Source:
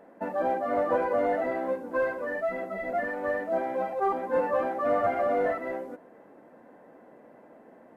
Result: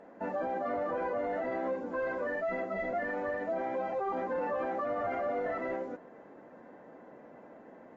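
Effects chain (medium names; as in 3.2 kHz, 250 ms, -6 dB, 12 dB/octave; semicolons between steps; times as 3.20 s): peak limiter -26.5 dBFS, peak gain reduction 11.5 dB; AAC 24 kbps 32 kHz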